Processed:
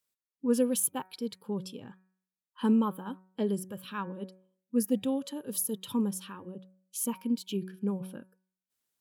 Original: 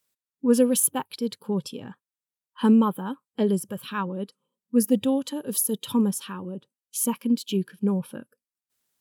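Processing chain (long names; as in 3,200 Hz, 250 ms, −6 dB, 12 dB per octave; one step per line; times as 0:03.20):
hum removal 186.8 Hz, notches 13
level −7 dB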